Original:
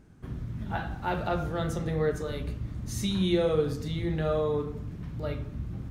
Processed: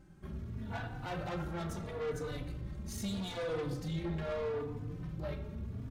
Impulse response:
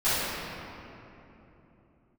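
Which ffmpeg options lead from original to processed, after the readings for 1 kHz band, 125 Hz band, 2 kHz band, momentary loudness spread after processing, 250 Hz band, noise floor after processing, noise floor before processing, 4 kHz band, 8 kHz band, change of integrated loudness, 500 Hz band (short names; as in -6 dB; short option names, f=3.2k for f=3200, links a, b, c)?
-9.0 dB, -8.0 dB, -6.5 dB, 6 LU, -9.0 dB, -46 dBFS, -42 dBFS, -8.5 dB, -6.5 dB, -8.5 dB, -9.5 dB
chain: -filter_complex "[0:a]asoftclip=type=tanh:threshold=-32.5dB,asplit=2[a][b];[1:a]atrim=start_sample=2205,asetrate=83790,aresample=44100[c];[b][c]afir=irnorm=-1:irlink=0,volume=-23.5dB[d];[a][d]amix=inputs=2:normalize=0,asplit=2[e][f];[f]adelay=3.4,afreqshift=0.78[g];[e][g]amix=inputs=2:normalize=1"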